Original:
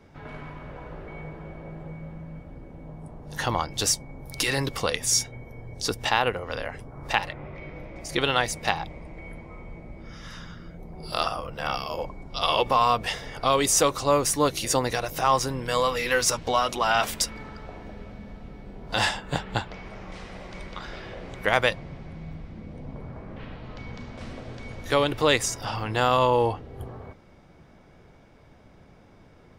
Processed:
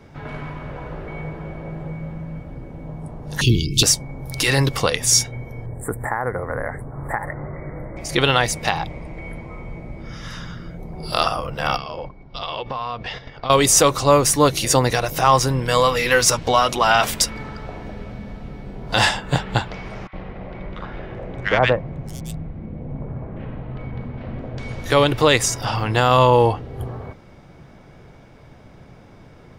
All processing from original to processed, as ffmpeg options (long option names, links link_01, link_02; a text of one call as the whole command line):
ffmpeg -i in.wav -filter_complex "[0:a]asettb=1/sr,asplit=3[link_01][link_02][link_03];[link_01]atrim=end=3.414[link_04];[link_02]atrim=start=3.41:end=3.83,asetpts=PTS-STARTPTS,afade=type=in:duration=0.004:curve=qsin,afade=type=out:start_time=0.416:duration=0.004:curve=qsin,acontrast=54,asuperstop=centerf=1000:order=20:qfactor=0.51[link_05];[link_03]atrim=start=3.826[link_06];[link_04][link_05]acrossfade=duration=0.004:curve1=hsin:curve2=qsin[link_07];[link_07][link_06]acrossfade=duration=0.004:curve1=qsin:curve2=hsin,asettb=1/sr,asplit=3[link_08][link_09][link_10];[link_08]atrim=end=5.664[link_11];[link_09]atrim=start=5.66:end=7.97,asetpts=PTS-STARTPTS,afade=type=in:duration=0.004:curve=qsin,afade=type=out:start_time=2.306:duration=0.004:curve=qsin,acompressor=threshold=-26dB:ratio=3:attack=3.2:release=140:knee=1:detection=peak,asuperstop=centerf=4100:order=20:qfactor=0.73[link_12];[link_10]atrim=start=7.966[link_13];[link_11][link_12]acrossfade=duration=0.004:curve1=hsin:curve2=qsin[link_14];[link_14][link_13]acrossfade=duration=0.004:curve1=qsin:curve2=hsin,asettb=1/sr,asplit=3[link_15][link_16][link_17];[link_15]atrim=end=11.774[link_18];[link_16]atrim=start=11.77:end=13.5,asetpts=PTS-STARTPTS,afade=type=in:duration=0.004:curve=qsin,afade=type=out:start_time=1.726:duration=0.004:curve=qsin,agate=range=-11dB:threshold=-36dB:ratio=16:release=100:detection=peak,lowpass=frequency=4700:width=0.5412,lowpass=frequency=4700:width=1.3066,acompressor=threshold=-35dB:ratio=3:attack=3.2:release=140:knee=1:detection=peak[link_19];[link_17]atrim=start=13.496[link_20];[link_18][link_19]acrossfade=duration=0.004:curve1=hsin:curve2=qsin[link_21];[link_21][link_20]acrossfade=duration=0.004:curve1=qsin:curve2=hsin,asettb=1/sr,asplit=3[link_22][link_23][link_24];[link_22]atrim=end=20.074[link_25];[link_23]atrim=start=20.07:end=24.58,asetpts=PTS-STARTPTS,afade=type=in:duration=0.004:curve=qsin,afade=type=out:start_time=4.506:duration=0.004:curve=qsin,highshelf=frequency=4600:gain=-11,adynamicsmooth=sensitivity=4:basefreq=2300,acrossover=split=1300|5400[link_26][link_27][link_28];[link_26]adelay=60[link_29];[link_28]adelay=620[link_30];[link_29][link_27][link_30]amix=inputs=3:normalize=0,atrim=end_sample=198891[link_31];[link_24]atrim=start=24.576[link_32];[link_25][link_31]acrossfade=duration=0.004:curve1=hsin:curve2=qsin[link_33];[link_33][link_32]acrossfade=duration=0.004:curve1=qsin:curve2=hsin,equalizer=frequency=130:width_type=o:width=0.32:gain=6,alimiter=level_in=8dB:limit=-1dB:release=50:level=0:latency=1,volume=-1dB" out.wav